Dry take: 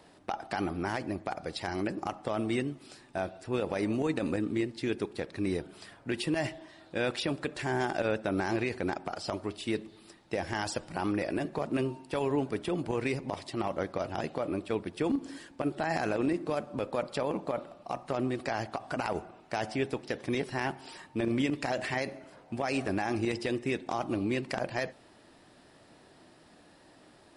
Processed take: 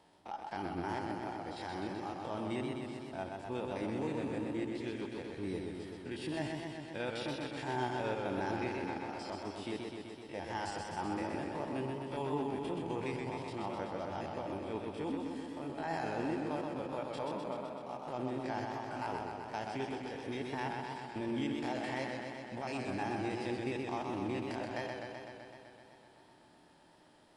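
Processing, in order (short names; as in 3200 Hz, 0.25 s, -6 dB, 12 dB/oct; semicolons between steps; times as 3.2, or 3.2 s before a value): stepped spectrum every 50 ms; small resonant body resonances 890/3200 Hz, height 10 dB, ringing for 35 ms; warbling echo 0.127 s, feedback 75%, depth 86 cents, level -4 dB; gain -8 dB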